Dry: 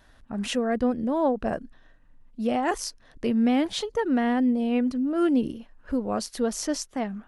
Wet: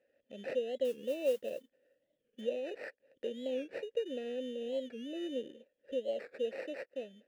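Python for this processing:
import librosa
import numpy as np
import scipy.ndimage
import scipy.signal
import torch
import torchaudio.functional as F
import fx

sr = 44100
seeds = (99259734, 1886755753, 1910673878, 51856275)

y = fx.recorder_agc(x, sr, target_db=-16.5, rise_db_per_s=12.0, max_gain_db=30)
y = fx.band_shelf(y, sr, hz=1200.0, db=-14.5, octaves=1.7)
y = fx.sample_hold(y, sr, seeds[0], rate_hz=3300.0, jitter_pct=0)
y = fx.vowel_filter(y, sr, vowel='e')
y = fx.mod_noise(y, sr, seeds[1], snr_db=25, at=(0.85, 2.4), fade=0.02)
y = fx.highpass(y, sr, hz=140.0, slope=6)
y = fx.record_warp(y, sr, rpm=45.0, depth_cents=160.0)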